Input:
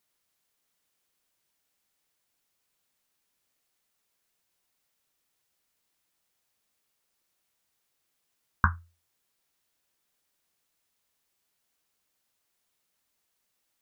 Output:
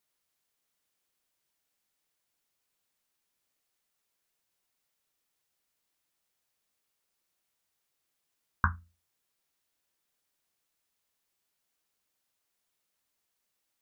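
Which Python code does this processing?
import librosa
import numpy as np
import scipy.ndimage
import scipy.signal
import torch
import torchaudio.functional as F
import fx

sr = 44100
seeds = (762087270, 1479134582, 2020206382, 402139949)

y = fx.hum_notches(x, sr, base_hz=60, count=4)
y = y * 10.0 ** (-3.5 / 20.0)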